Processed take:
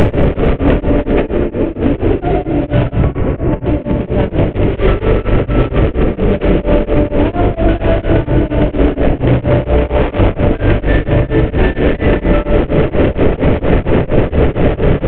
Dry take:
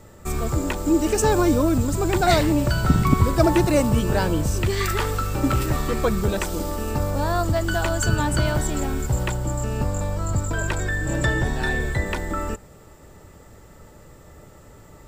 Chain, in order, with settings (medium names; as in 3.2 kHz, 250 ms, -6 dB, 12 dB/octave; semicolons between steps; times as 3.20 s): one-bit delta coder 16 kbps, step -16.5 dBFS; 9.62–10.18 s: high-pass 350 Hz -> 740 Hz 12 dB/octave; echo whose repeats swap between lows and highs 115 ms, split 910 Hz, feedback 88%, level -13.5 dB; short-mantissa float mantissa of 8-bit; resonant low shelf 720 Hz +9 dB, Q 1.5; compressor with a negative ratio -14 dBFS, ratio -0.5; 3.01–3.64 s: low-pass 2.1 kHz 12 dB/octave; simulated room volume 120 m³, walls hard, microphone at 0.3 m; loudness maximiser +6 dB; tremolo of two beating tones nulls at 4.3 Hz